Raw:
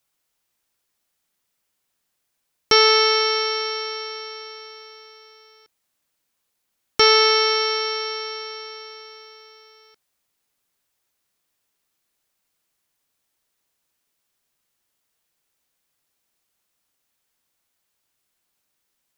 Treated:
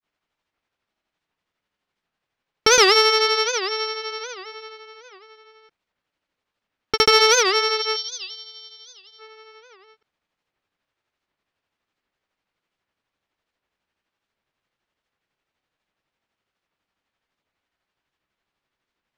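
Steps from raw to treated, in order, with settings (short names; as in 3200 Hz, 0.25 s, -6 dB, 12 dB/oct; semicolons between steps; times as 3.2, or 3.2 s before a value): spectral gain 7.88–9.13, 390–2900 Hz -22 dB; grains 0.147 s, grains 12/s, pitch spread up and down by 0 st; low-pass opened by the level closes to 2900 Hz, open at -22.5 dBFS; in parallel at -3 dB: soft clip -16.5 dBFS, distortion -10 dB; on the sum: record warp 78 rpm, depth 250 cents; gain -1 dB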